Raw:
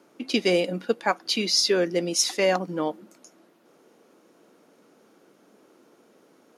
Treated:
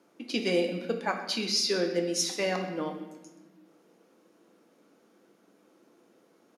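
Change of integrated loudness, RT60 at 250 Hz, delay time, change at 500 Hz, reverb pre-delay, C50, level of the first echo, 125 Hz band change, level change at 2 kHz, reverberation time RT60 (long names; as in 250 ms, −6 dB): −5.5 dB, 2.0 s, 129 ms, −5.5 dB, 6 ms, 7.0 dB, −16.5 dB, −4.0 dB, −5.0 dB, 1.1 s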